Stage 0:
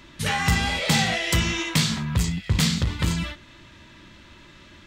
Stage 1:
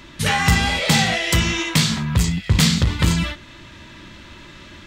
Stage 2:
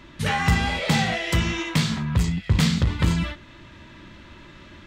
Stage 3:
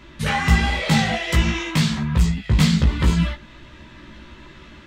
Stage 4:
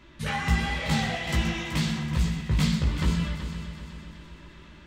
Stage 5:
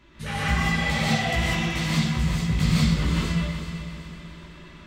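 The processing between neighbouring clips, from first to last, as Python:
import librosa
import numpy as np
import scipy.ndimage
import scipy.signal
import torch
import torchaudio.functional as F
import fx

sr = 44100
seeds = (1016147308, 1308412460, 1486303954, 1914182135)

y1 = fx.rider(x, sr, range_db=10, speed_s=2.0)
y1 = y1 * 10.0 ** (4.5 / 20.0)
y2 = fx.high_shelf(y1, sr, hz=3400.0, db=-9.0)
y2 = y2 * 10.0 ** (-3.0 / 20.0)
y3 = fx.chorus_voices(y2, sr, voices=6, hz=1.4, base_ms=16, depth_ms=3.0, mix_pct=45)
y3 = y3 * 10.0 ** (5.0 / 20.0)
y4 = fx.echo_heads(y3, sr, ms=126, heads='first and third', feedback_pct=61, wet_db=-11)
y4 = y4 * 10.0 ** (-8.0 / 20.0)
y5 = fx.rev_gated(y4, sr, seeds[0], gate_ms=210, shape='rising', drr_db=-6.0)
y5 = y5 * 10.0 ** (-3.0 / 20.0)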